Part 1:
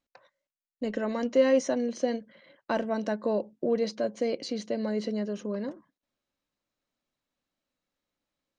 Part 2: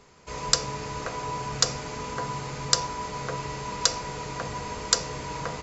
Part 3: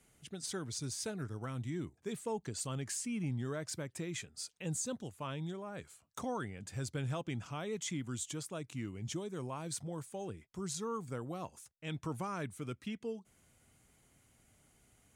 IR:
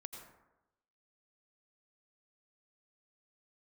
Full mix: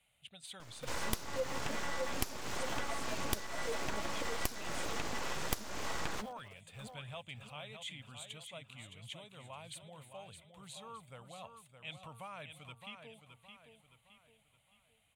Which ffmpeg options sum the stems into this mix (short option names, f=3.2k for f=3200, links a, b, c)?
-filter_complex "[0:a]aphaser=in_gain=1:out_gain=1:delay=3.7:decay=0.8:speed=0.89:type=triangular,aeval=exprs='val(0)*gte(abs(val(0)),0.0596)':c=same,volume=-18dB,asplit=2[a][b];[b]volume=-4dB[c];[1:a]aeval=exprs='abs(val(0))':c=same,adelay=600,volume=1.5dB[d];[2:a]firequalizer=gain_entry='entry(110,0);entry(360,-15);entry(570,6);entry(810,5);entry(1600,1);entry(2500,13);entry(3700,12);entry(5300,-10);entry(8700,3)':delay=0.05:min_phase=1,volume=-10.5dB,asplit=2[e][f];[f]volume=-8dB[g];[c][g]amix=inputs=2:normalize=0,aecho=0:1:616|1232|1848|2464|3080|3696:1|0.41|0.168|0.0689|0.0283|0.0116[h];[a][d][e][h]amix=inputs=4:normalize=0,acompressor=threshold=-32dB:ratio=6"